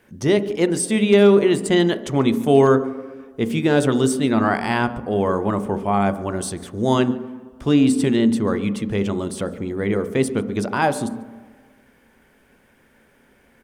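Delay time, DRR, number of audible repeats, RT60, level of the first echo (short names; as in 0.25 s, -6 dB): 0.143 s, 10.5 dB, 1, 1.5 s, -22.5 dB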